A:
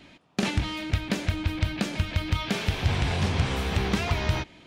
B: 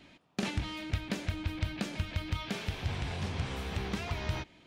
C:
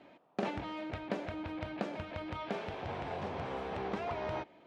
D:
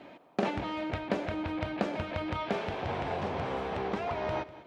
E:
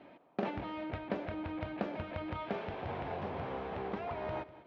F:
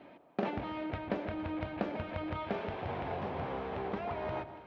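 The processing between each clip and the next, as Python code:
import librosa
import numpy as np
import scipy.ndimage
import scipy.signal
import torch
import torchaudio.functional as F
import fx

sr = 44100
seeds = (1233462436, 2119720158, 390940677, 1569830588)

y1 = fx.rider(x, sr, range_db=4, speed_s=0.5)
y1 = y1 * 10.0 ** (-8.5 / 20.0)
y2 = fx.bandpass_q(y1, sr, hz=640.0, q=1.2)
y2 = y2 * 10.0 ** (6.5 / 20.0)
y3 = fx.rider(y2, sr, range_db=10, speed_s=0.5)
y3 = y3 + 10.0 ** (-17.5 / 20.0) * np.pad(y3, (int(197 * sr / 1000.0), 0))[:len(y3)]
y3 = y3 * 10.0 ** (5.5 / 20.0)
y4 = fx.air_absorb(y3, sr, metres=200.0)
y4 = y4 * 10.0 ** (-5.0 / 20.0)
y5 = fx.echo_alternate(y4, sr, ms=141, hz=960.0, feedback_pct=65, wet_db=-12)
y5 = y5 * 10.0 ** (1.5 / 20.0)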